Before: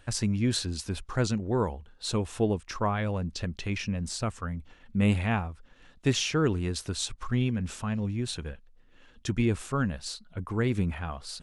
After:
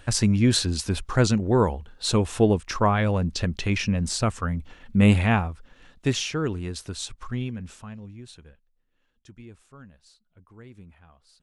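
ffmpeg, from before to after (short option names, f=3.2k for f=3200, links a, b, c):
-af "volume=7dB,afade=t=out:st=5.22:d=1.17:silence=0.375837,afade=t=out:st=7.22:d=0.78:silence=0.354813,afade=t=out:st=8:d=1.37:silence=0.354813"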